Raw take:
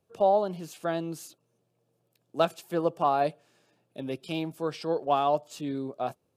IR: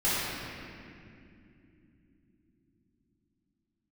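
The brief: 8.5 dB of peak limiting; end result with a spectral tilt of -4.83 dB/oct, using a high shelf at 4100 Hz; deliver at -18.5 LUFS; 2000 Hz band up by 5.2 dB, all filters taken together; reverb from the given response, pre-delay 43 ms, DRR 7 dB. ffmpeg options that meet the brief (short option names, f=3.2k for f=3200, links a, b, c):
-filter_complex "[0:a]equalizer=f=2k:t=o:g=5.5,highshelf=f=4.1k:g=7.5,alimiter=limit=-17.5dB:level=0:latency=1,asplit=2[a][b];[1:a]atrim=start_sample=2205,adelay=43[c];[b][c]afir=irnorm=-1:irlink=0,volume=-20dB[d];[a][d]amix=inputs=2:normalize=0,volume=12dB"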